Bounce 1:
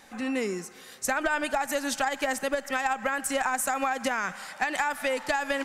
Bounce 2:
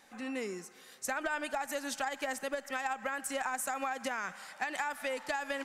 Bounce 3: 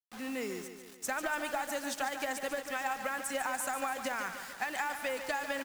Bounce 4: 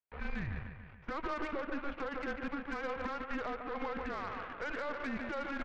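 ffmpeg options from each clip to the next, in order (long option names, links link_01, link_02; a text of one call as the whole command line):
ffmpeg -i in.wav -af "lowshelf=frequency=130:gain=-8,volume=-7.5dB" out.wav
ffmpeg -i in.wav -filter_complex "[0:a]acrusher=bits=7:mix=0:aa=0.000001,asplit=2[link_01][link_02];[link_02]aecho=0:1:145|290|435|580|725|870|1015:0.335|0.188|0.105|0.0588|0.0329|0.0184|0.0103[link_03];[link_01][link_03]amix=inputs=2:normalize=0" out.wav
ffmpeg -i in.wav -af "alimiter=level_in=6dB:limit=-24dB:level=0:latency=1:release=54,volume=-6dB,highpass=frequency=180:width_type=q:width=0.5412,highpass=frequency=180:width_type=q:width=1.307,lowpass=frequency=2700:width_type=q:width=0.5176,lowpass=frequency=2700:width_type=q:width=0.7071,lowpass=frequency=2700:width_type=q:width=1.932,afreqshift=-290,aeval=exprs='0.0376*(cos(1*acos(clip(val(0)/0.0376,-1,1)))-cos(1*PI/2))+0.00376*(cos(6*acos(clip(val(0)/0.0376,-1,1)))-cos(6*PI/2))':channel_layout=same,volume=1.5dB" out.wav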